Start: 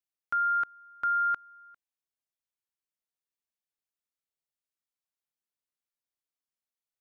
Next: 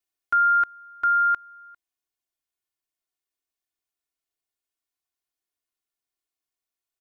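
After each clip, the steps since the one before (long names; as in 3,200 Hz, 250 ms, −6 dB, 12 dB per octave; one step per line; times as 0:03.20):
comb filter 2.8 ms, depth 81%
in parallel at +0.5 dB: speech leveller 2 s
on the sum: level −4 dB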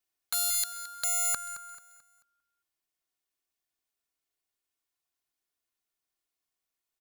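wrap-around overflow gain 23 dB
repeating echo 219 ms, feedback 37%, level −14 dB
level +1 dB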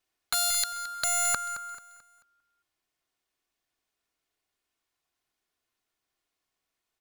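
low-pass filter 4,000 Hz 6 dB per octave
level +8 dB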